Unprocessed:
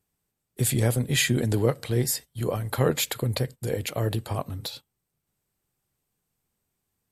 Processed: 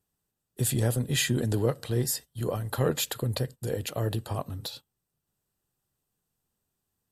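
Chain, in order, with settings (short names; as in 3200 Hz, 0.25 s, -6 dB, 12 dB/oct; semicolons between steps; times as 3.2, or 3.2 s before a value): notch 2200 Hz, Q 5.1; in parallel at -7 dB: soft clip -17.5 dBFS, distortion -15 dB; on the sum: gain -5.5 dB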